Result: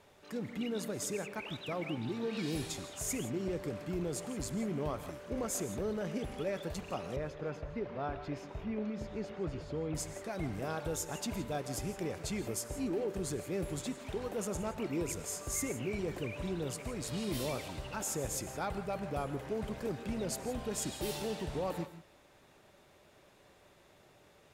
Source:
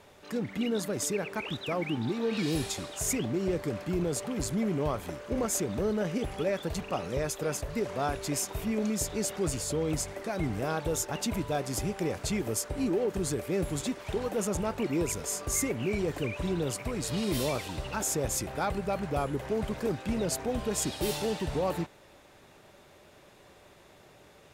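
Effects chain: 7.16–9.95 air absorption 300 m; non-linear reverb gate 0.19 s rising, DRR 11.5 dB; gain -6.5 dB

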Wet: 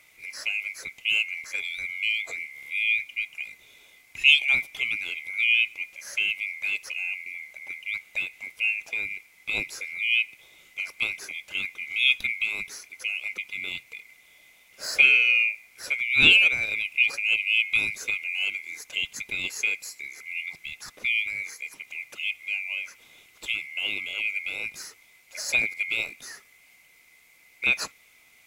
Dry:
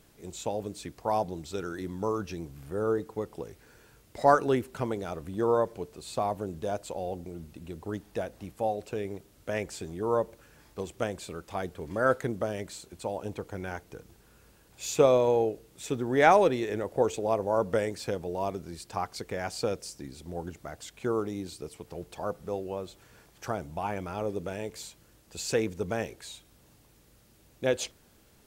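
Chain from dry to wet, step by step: band-swap scrambler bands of 2000 Hz; gain +3 dB

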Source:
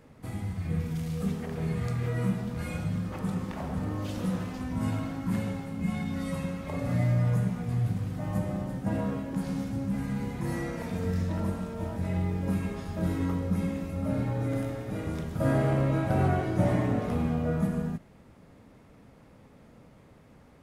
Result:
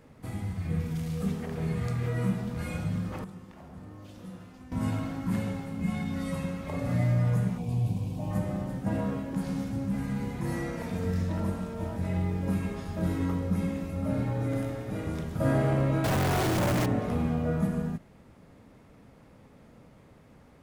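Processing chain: 3.24–4.72 resonator 350 Hz, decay 0.73 s, mix 80%; 7.57–8.31 spectral gain 1100–2200 Hz -15 dB; 16.04–16.86 companded quantiser 2-bit

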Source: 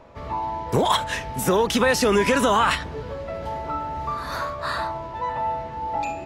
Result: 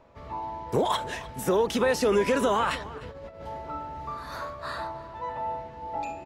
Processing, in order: dynamic EQ 440 Hz, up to +6 dB, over -32 dBFS, Q 0.8; 2.98–3.41 negative-ratio compressor -33 dBFS, ratio -0.5; outdoor echo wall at 52 m, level -17 dB; gain -8.5 dB

